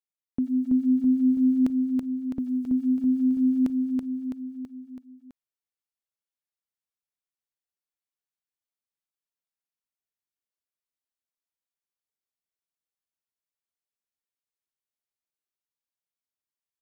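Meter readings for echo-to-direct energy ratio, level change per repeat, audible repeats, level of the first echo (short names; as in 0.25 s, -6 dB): -1.5 dB, -4.5 dB, 5, -3.5 dB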